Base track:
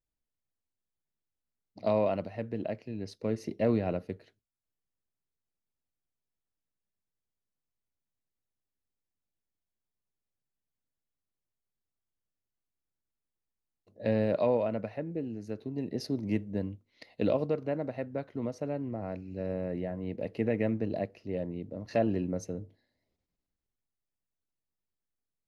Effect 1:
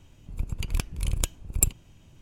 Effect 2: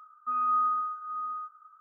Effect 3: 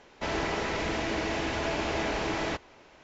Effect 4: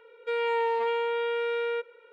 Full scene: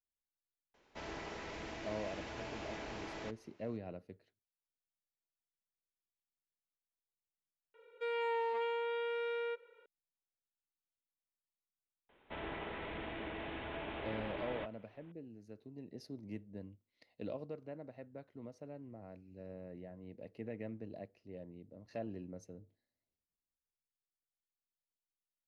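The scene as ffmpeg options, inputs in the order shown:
ffmpeg -i bed.wav -i cue0.wav -i cue1.wav -i cue2.wav -i cue3.wav -filter_complex "[3:a]asplit=2[link_01][link_02];[0:a]volume=-15dB[link_03];[link_02]aresample=8000,aresample=44100[link_04];[link_01]atrim=end=3.03,asetpts=PTS-STARTPTS,volume=-15dB,afade=type=in:duration=0.004:curve=hsin,afade=type=out:start_time=3.026:duration=0.004:curve=hsin,adelay=740[link_05];[4:a]atrim=end=2.12,asetpts=PTS-STARTPTS,volume=-9dB,afade=type=in:duration=0.004:curve=hsin,afade=type=out:start_time=2.116:duration=0.004:curve=hsin,adelay=7740[link_06];[link_04]atrim=end=3.03,asetpts=PTS-STARTPTS,volume=-13dB,afade=type=in:duration=0.004:curve=hsin,afade=type=out:start_time=3.026:duration=0.004:curve=hsin,adelay=12090[link_07];[link_03][link_05][link_06][link_07]amix=inputs=4:normalize=0" out.wav

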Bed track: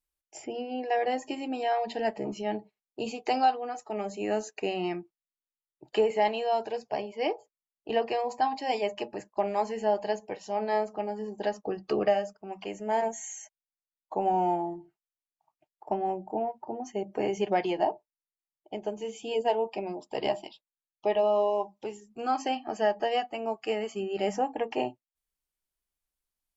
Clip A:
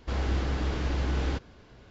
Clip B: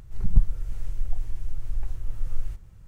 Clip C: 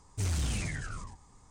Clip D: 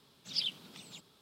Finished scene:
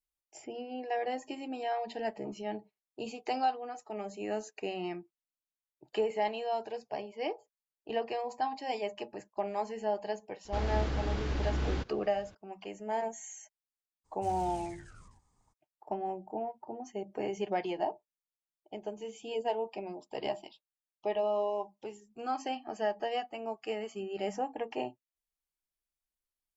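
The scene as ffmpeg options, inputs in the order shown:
ffmpeg -i bed.wav -i cue0.wav -i cue1.wav -i cue2.wav -filter_complex "[0:a]volume=-6dB[link_01];[1:a]atrim=end=1.9,asetpts=PTS-STARTPTS,volume=-4dB,afade=type=in:duration=0.004:curve=hsin,afade=type=out:start_time=1.896:duration=0.004:curve=hsin,adelay=10450[link_02];[3:a]atrim=end=1.5,asetpts=PTS-STARTPTS,volume=-14.5dB,afade=type=in:duration=0.02,afade=type=out:start_time=1.48:duration=0.02,adelay=14040[link_03];[link_01][link_02][link_03]amix=inputs=3:normalize=0" out.wav

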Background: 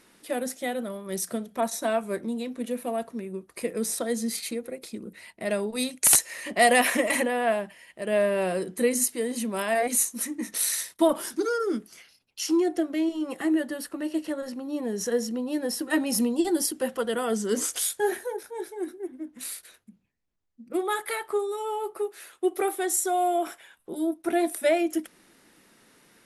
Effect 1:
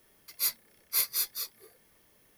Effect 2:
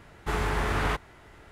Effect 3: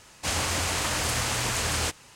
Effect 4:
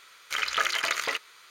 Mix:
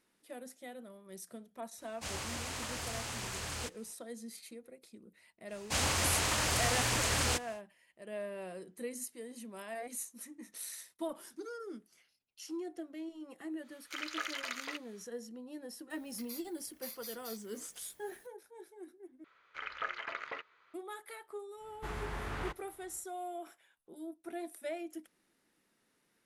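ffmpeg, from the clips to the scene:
ffmpeg -i bed.wav -i cue0.wav -i cue1.wav -i cue2.wav -i cue3.wav -filter_complex "[3:a]asplit=2[link_01][link_02];[4:a]asplit=2[link_03][link_04];[0:a]volume=-17.5dB[link_05];[link_03]lowshelf=frequency=230:gain=-8[link_06];[1:a]acompressor=threshold=-41dB:ratio=6:attack=3.2:release=140:knee=1:detection=peak[link_07];[link_04]lowpass=1800[link_08];[link_05]asplit=2[link_09][link_10];[link_09]atrim=end=19.244[link_11];[link_08]atrim=end=1.5,asetpts=PTS-STARTPTS,volume=-9.5dB[link_12];[link_10]atrim=start=20.736[link_13];[link_01]atrim=end=2.15,asetpts=PTS-STARTPTS,volume=-13dB,afade=type=in:duration=0.004:curve=hsin,afade=type=out:start_time=2.146:duration=0.004:curve=hsin,adelay=1780[link_14];[link_02]atrim=end=2.15,asetpts=PTS-STARTPTS,volume=-4dB,afade=type=in:duration=0.1,afade=type=out:start_time=2.05:duration=0.1,adelay=5470[link_15];[link_06]atrim=end=1.5,asetpts=PTS-STARTPTS,volume=-12.5dB,afade=type=in:duration=0.1,afade=type=out:start_time=1.4:duration=0.1,adelay=13600[link_16];[link_07]atrim=end=2.37,asetpts=PTS-STARTPTS,volume=-2.5dB,afade=type=in:duration=0.004:curve=hsin,afade=type=out:start_time=2.366:duration=0.004:curve=hsin,adelay=15900[link_17];[2:a]atrim=end=1.51,asetpts=PTS-STARTPTS,volume=-12.5dB,afade=type=in:duration=0.1,afade=type=out:start_time=1.41:duration=0.1,adelay=21560[link_18];[link_11][link_12]acrossfade=duration=0.004:curve1=hsin:curve2=hsin[link_19];[link_19][link_13]acrossfade=duration=0.004:curve1=hsin:curve2=hsin[link_20];[link_20][link_14][link_15][link_16][link_17][link_18]amix=inputs=6:normalize=0" out.wav

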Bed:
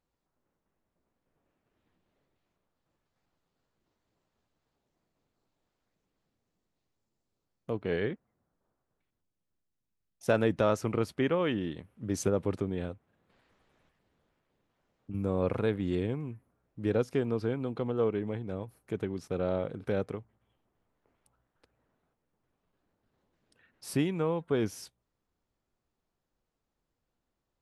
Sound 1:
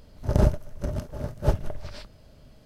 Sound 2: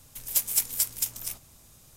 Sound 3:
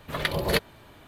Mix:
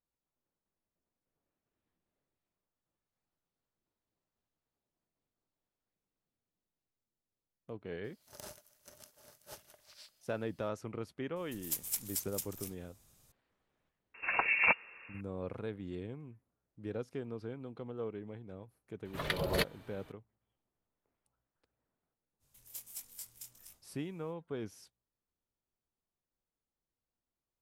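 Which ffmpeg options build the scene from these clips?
ffmpeg -i bed.wav -i cue0.wav -i cue1.wav -i cue2.wav -filter_complex "[2:a]asplit=2[link_01][link_02];[3:a]asplit=2[link_03][link_04];[0:a]volume=-11.5dB[link_05];[1:a]aderivative[link_06];[link_03]lowpass=frequency=2400:width_type=q:width=0.5098,lowpass=frequency=2400:width_type=q:width=0.6013,lowpass=frequency=2400:width_type=q:width=0.9,lowpass=frequency=2400:width_type=q:width=2.563,afreqshift=-2800[link_07];[link_02]flanger=delay=20:depth=6.3:speed=1.5[link_08];[link_06]atrim=end=2.65,asetpts=PTS-STARTPTS,volume=-4dB,afade=type=in:duration=0.004:curve=hsin,afade=type=out:start_time=2.646:duration=0.004:curve=hsin,adelay=8040[link_09];[link_01]atrim=end=1.96,asetpts=PTS-STARTPTS,volume=-11.5dB,afade=type=in:duration=0.004:curve=hsin,afade=type=out:start_time=1.956:duration=0.004:curve=hsin,adelay=11360[link_10];[link_07]atrim=end=1.07,asetpts=PTS-STARTPTS,volume=-2.5dB,afade=type=in:duration=0.004:curve=hsin,afade=type=out:start_time=1.066:duration=0.004:curve=hsin,adelay=14140[link_11];[link_04]atrim=end=1.07,asetpts=PTS-STARTPTS,volume=-7.5dB,afade=type=in:duration=0.004:curve=hsin,afade=type=out:start_time=1.066:duration=0.004:curve=hsin,adelay=19050[link_12];[link_08]atrim=end=1.96,asetpts=PTS-STARTPTS,volume=-17.5dB,afade=type=in:duration=0.05,afade=type=out:start_time=1.91:duration=0.05,adelay=22390[link_13];[link_05][link_09][link_10][link_11][link_12][link_13]amix=inputs=6:normalize=0" out.wav

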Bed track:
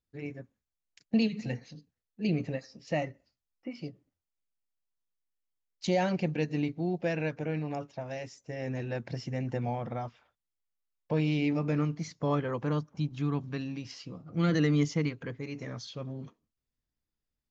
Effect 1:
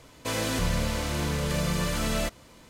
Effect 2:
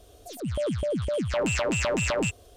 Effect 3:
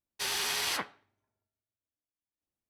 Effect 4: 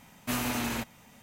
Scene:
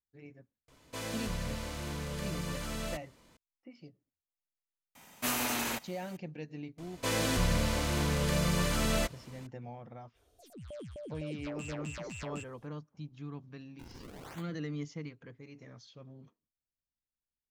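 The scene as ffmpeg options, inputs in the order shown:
ffmpeg -i bed.wav -i cue0.wav -i cue1.wav -i cue2.wav -i cue3.wav -filter_complex "[1:a]asplit=2[link_01][link_02];[0:a]volume=-12.5dB[link_03];[4:a]bass=frequency=250:gain=-9,treble=frequency=4000:gain=3[link_04];[3:a]acrusher=samples=41:mix=1:aa=0.000001:lfo=1:lforange=65.6:lforate=0.92[link_05];[link_01]atrim=end=2.69,asetpts=PTS-STARTPTS,volume=-10dB,afade=type=in:duration=0.004:curve=hsin,afade=type=out:start_time=2.686:duration=0.004:curve=hsin,adelay=680[link_06];[link_04]atrim=end=1.22,asetpts=PTS-STARTPTS,volume=-0.5dB,afade=type=in:duration=0.004:curve=hsin,afade=type=out:start_time=1.216:duration=0.004:curve=hsin,adelay=4950[link_07];[link_02]atrim=end=2.69,asetpts=PTS-STARTPTS,volume=-2dB,afade=type=in:duration=0.004:curve=hsin,afade=type=out:start_time=2.686:duration=0.004:curve=hsin,adelay=6780[link_08];[2:a]atrim=end=2.56,asetpts=PTS-STARTPTS,volume=-17dB,afade=type=in:duration=0.05,afade=type=out:start_time=2.51:duration=0.05,adelay=10130[link_09];[link_05]atrim=end=2.69,asetpts=PTS-STARTPTS,volume=-16.5dB,afade=type=in:duration=0.004:curve=hsin,afade=type=out:start_time=2.686:duration=0.004:curve=hsin,adelay=13590[link_10];[link_03][link_06][link_07][link_08][link_09][link_10]amix=inputs=6:normalize=0" out.wav

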